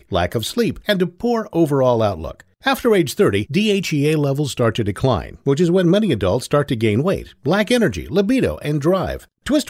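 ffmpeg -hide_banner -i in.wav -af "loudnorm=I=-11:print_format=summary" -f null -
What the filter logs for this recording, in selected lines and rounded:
Input Integrated:    -18.5 LUFS
Input True Peak:      -3.3 dBTP
Input LRA:             1.2 LU
Input Threshold:     -28.6 LUFS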